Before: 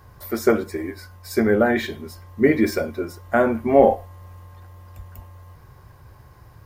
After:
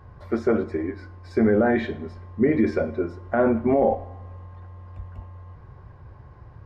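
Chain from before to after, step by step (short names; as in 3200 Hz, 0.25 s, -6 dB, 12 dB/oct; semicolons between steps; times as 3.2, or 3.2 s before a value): limiter -11.5 dBFS, peak gain reduction 10 dB; tape spacing loss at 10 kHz 33 dB; plate-style reverb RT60 1.2 s, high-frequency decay 0.85×, DRR 17 dB; gain +2.5 dB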